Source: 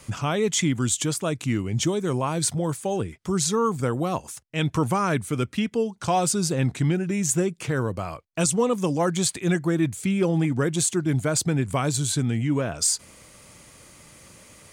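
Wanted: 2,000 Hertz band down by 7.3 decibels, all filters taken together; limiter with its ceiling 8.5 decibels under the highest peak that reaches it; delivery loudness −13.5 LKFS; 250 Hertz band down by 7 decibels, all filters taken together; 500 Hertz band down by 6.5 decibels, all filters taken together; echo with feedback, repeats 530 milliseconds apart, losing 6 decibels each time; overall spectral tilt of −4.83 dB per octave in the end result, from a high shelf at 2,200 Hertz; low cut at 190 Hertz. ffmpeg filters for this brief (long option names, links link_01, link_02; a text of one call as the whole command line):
ffmpeg -i in.wav -af "highpass=190,equalizer=frequency=250:width_type=o:gain=-5.5,equalizer=frequency=500:width_type=o:gain=-5.5,equalizer=frequency=2000:width_type=o:gain=-5,highshelf=frequency=2200:gain=-8,alimiter=limit=-23.5dB:level=0:latency=1,aecho=1:1:530|1060|1590|2120|2650|3180:0.501|0.251|0.125|0.0626|0.0313|0.0157,volume=19dB" out.wav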